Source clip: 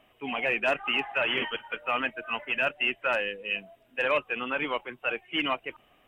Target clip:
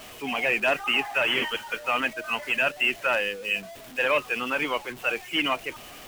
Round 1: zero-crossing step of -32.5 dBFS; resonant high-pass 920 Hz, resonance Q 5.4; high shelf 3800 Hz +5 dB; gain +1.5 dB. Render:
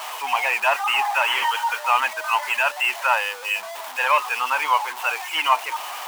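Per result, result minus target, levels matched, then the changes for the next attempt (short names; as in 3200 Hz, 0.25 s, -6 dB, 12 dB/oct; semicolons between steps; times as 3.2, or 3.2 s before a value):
1000 Hz band +7.0 dB; zero-crossing step: distortion +8 dB
remove: resonant high-pass 920 Hz, resonance Q 5.4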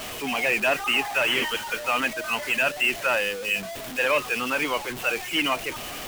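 zero-crossing step: distortion +8 dB
change: zero-crossing step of -42 dBFS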